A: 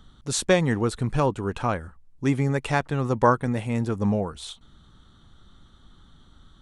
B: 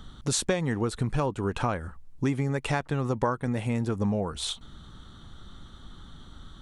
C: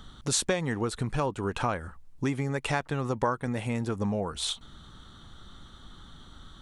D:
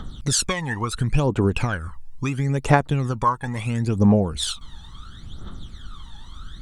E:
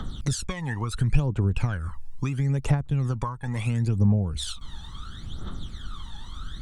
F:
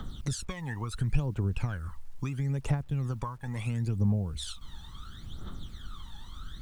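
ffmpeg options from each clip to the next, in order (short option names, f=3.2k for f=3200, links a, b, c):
-af "acompressor=threshold=-31dB:ratio=5,volume=6.5dB"
-af "lowshelf=f=450:g=-4.5,volume=1dB"
-af "aphaser=in_gain=1:out_gain=1:delay=1.2:decay=0.76:speed=0.73:type=triangular,volume=2.5dB"
-filter_complex "[0:a]acrossover=split=150[a][b];[b]acompressor=threshold=-32dB:ratio=8[c];[a][c]amix=inputs=2:normalize=0,volume=1.5dB"
-af "acrusher=bits=9:mix=0:aa=0.000001,volume=-6dB"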